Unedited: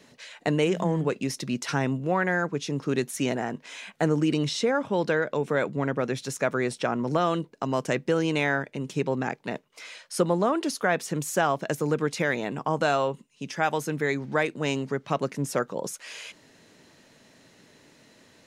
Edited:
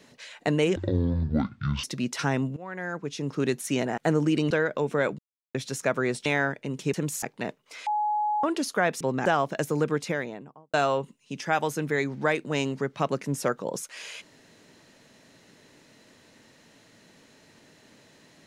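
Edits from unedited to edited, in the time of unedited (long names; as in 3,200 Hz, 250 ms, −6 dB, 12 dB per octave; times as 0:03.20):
0:00.76–0:01.33: play speed 53%
0:02.06–0:02.90: fade in, from −21.5 dB
0:03.47–0:03.93: remove
0:04.46–0:05.07: remove
0:05.75–0:06.11: silence
0:06.82–0:08.36: remove
0:09.04–0:09.29: swap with 0:11.07–0:11.36
0:09.93–0:10.50: beep over 842 Hz −23 dBFS
0:11.96–0:12.84: fade out and dull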